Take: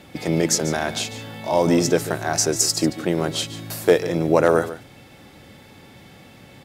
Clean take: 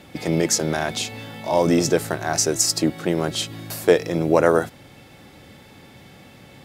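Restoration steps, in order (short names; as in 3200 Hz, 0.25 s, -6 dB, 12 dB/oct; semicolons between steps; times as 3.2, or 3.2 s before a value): clip repair -4 dBFS; inverse comb 0.145 s -14 dB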